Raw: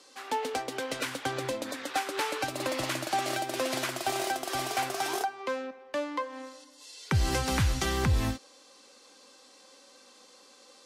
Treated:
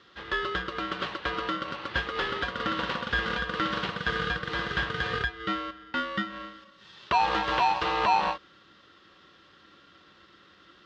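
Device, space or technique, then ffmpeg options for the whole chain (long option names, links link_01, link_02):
ring modulator pedal into a guitar cabinet: -af "aeval=exprs='val(0)*sgn(sin(2*PI*840*n/s))':channel_layout=same,highpass=86,equalizer=frequency=270:width_type=q:width=4:gain=-8,equalizer=frequency=660:width_type=q:width=4:gain=-10,equalizer=frequency=2300:width_type=q:width=4:gain=-10,lowpass=frequency=3400:width=0.5412,lowpass=frequency=3400:width=1.3066,volume=5dB"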